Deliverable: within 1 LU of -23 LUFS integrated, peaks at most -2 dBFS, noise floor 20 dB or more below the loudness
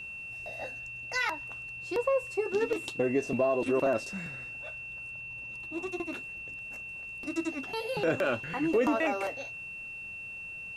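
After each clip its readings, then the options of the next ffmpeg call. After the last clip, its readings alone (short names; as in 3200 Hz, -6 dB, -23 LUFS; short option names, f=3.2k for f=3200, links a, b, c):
steady tone 2700 Hz; tone level -39 dBFS; loudness -32.5 LUFS; peak -16.0 dBFS; loudness target -23.0 LUFS
-> -af "bandreject=f=2.7k:w=30"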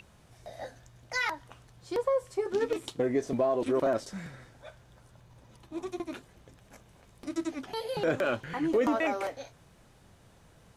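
steady tone none; loudness -31.0 LUFS; peak -16.5 dBFS; loudness target -23.0 LUFS
-> -af "volume=8dB"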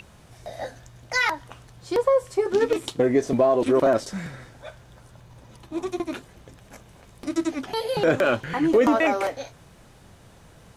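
loudness -23.0 LUFS; peak -8.5 dBFS; noise floor -52 dBFS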